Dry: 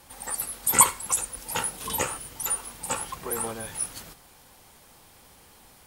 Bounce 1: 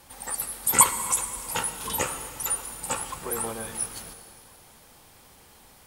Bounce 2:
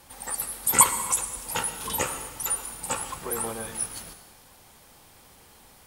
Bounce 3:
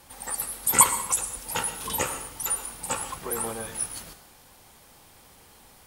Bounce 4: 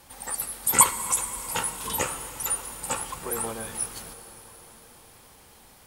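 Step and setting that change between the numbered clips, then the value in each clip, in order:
plate-style reverb, RT60: 2.5 s, 1.2 s, 0.54 s, 5.2 s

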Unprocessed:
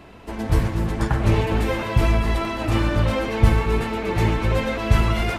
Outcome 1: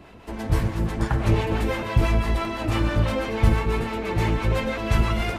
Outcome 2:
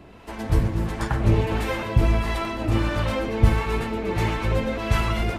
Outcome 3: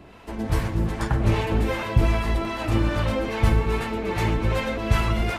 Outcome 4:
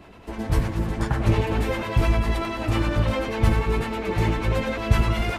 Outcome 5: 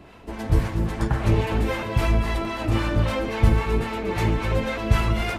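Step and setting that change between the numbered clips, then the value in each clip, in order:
harmonic tremolo, rate: 6 Hz, 1.5 Hz, 2.5 Hz, 10 Hz, 3.7 Hz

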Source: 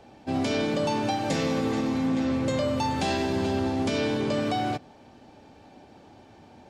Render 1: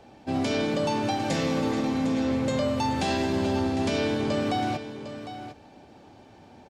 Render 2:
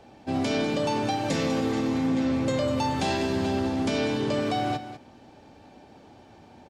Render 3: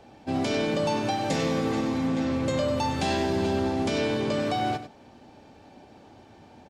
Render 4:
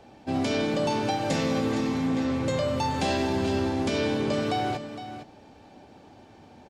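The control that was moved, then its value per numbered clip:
delay, time: 754 ms, 198 ms, 97 ms, 461 ms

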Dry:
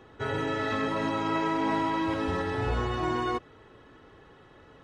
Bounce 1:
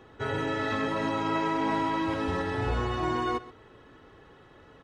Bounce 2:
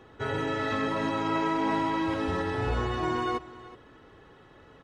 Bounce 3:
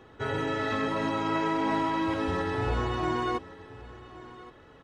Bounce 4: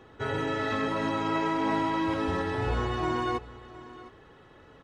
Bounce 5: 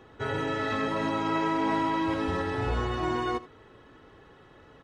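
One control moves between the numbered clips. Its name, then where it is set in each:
delay, time: 128 ms, 372 ms, 1120 ms, 711 ms, 80 ms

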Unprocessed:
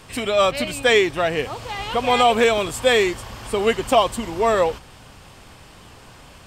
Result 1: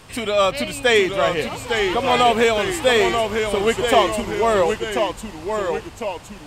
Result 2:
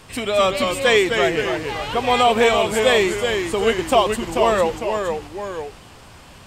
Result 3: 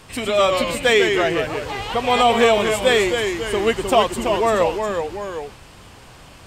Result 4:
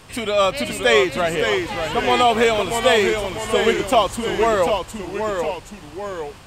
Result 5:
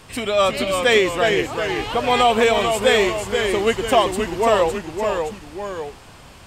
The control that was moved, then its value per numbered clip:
ever faster or slower copies, time: 805 ms, 205 ms, 98 ms, 513 ms, 311 ms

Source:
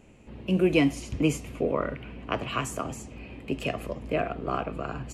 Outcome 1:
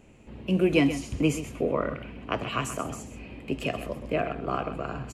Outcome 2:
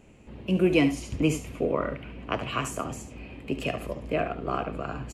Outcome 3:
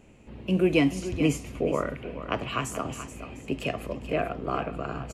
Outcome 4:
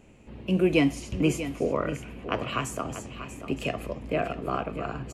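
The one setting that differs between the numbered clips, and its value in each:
delay, time: 129 ms, 72 ms, 430 ms, 639 ms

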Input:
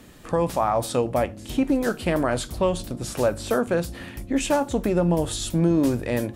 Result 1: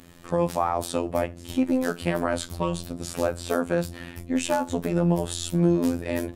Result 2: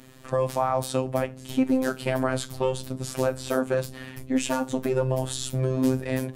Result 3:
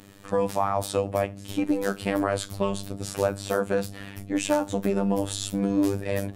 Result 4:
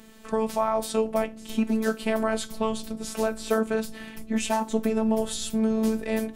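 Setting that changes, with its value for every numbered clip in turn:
robot voice, frequency: 86 Hz, 130 Hz, 99 Hz, 220 Hz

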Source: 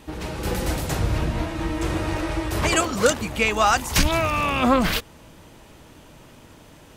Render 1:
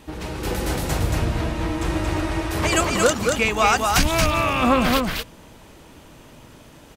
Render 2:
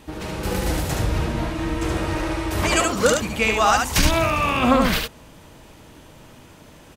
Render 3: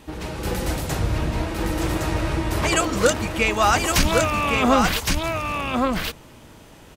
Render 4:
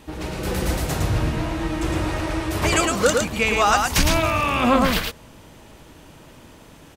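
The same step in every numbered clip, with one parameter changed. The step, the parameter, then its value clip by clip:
delay, time: 228 ms, 73 ms, 1114 ms, 110 ms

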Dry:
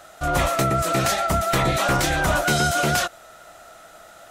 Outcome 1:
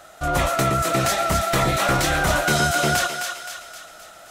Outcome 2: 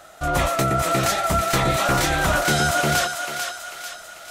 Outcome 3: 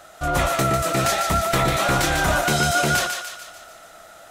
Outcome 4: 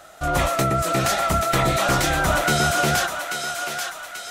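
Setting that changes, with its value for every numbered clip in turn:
thinning echo, time: 261 ms, 443 ms, 147 ms, 836 ms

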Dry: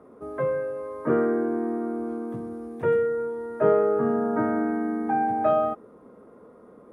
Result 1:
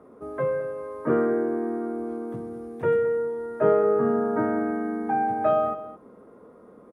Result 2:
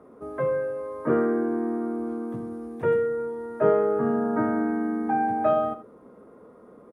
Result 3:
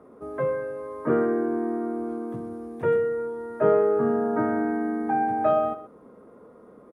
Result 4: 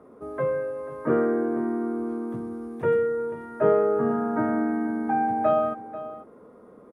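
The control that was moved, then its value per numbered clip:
delay, time: 217 ms, 78 ms, 123 ms, 490 ms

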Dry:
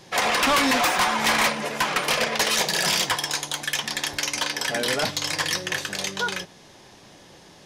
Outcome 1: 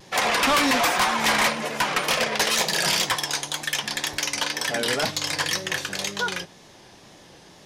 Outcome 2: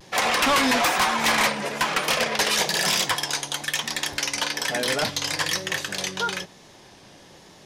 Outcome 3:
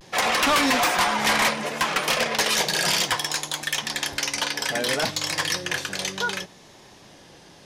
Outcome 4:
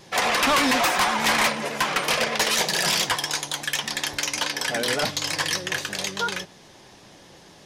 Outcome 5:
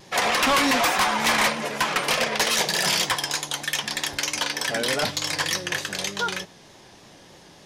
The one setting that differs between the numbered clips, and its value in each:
vibrato, rate: 2 Hz, 1.1 Hz, 0.64 Hz, 8.3 Hz, 3.3 Hz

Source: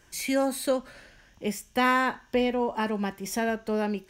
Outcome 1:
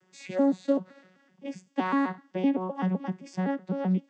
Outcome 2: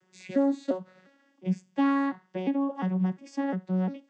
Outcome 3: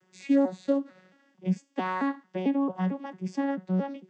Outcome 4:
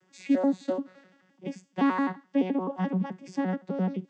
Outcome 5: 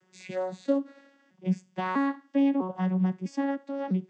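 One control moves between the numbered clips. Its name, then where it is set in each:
vocoder on a broken chord, a note every: 128 ms, 352 ms, 223 ms, 86 ms, 650 ms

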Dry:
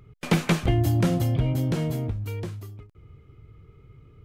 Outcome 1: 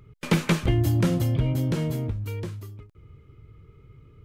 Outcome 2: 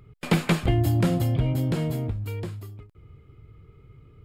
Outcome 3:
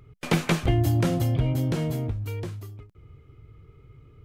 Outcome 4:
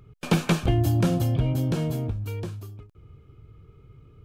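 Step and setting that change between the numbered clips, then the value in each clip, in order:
band-stop, frequency: 730 Hz, 6 kHz, 190 Hz, 2 kHz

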